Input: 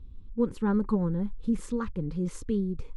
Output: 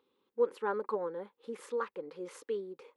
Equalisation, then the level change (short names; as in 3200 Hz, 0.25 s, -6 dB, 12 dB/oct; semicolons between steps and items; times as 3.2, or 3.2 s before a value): Chebyshev high-pass 470 Hz, order 3; bell 7400 Hz -11.5 dB 1.6 oct; +2.5 dB